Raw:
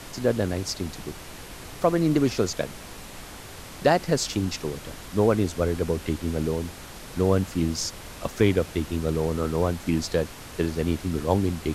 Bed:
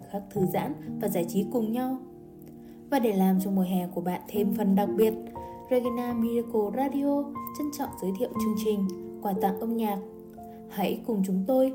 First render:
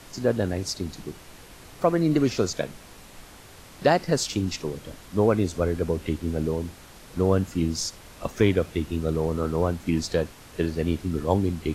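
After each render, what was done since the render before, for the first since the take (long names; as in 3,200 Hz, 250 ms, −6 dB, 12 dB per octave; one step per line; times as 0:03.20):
noise reduction from a noise print 6 dB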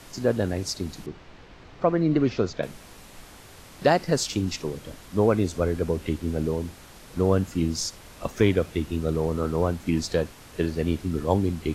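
0:01.06–0:02.63: high-frequency loss of the air 180 metres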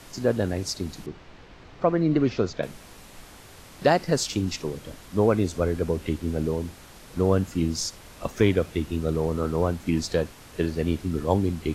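no processing that can be heard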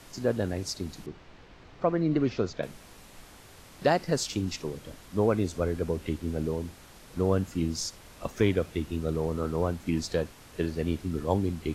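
level −4 dB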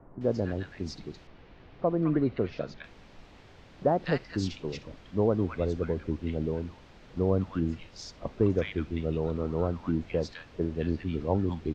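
high-frequency loss of the air 190 metres
multiband delay without the direct sound lows, highs 210 ms, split 1,200 Hz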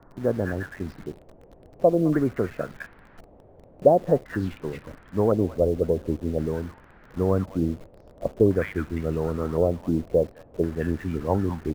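auto-filter low-pass square 0.47 Hz 600–1,600 Hz
in parallel at −8 dB: bit reduction 7 bits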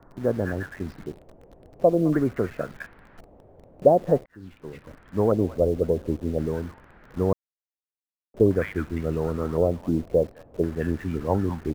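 0:04.26–0:05.22: fade in
0:07.33–0:08.34: silence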